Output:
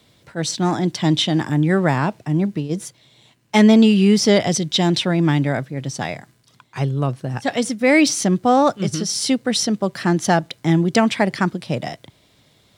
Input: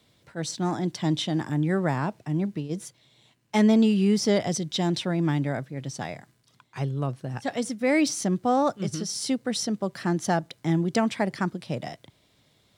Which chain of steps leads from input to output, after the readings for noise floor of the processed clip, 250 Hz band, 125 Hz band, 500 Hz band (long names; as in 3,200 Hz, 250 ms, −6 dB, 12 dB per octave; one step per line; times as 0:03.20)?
−57 dBFS, +7.5 dB, +7.5 dB, +7.5 dB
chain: dynamic equaliser 2,900 Hz, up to +4 dB, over −42 dBFS, Q 0.94
level +7.5 dB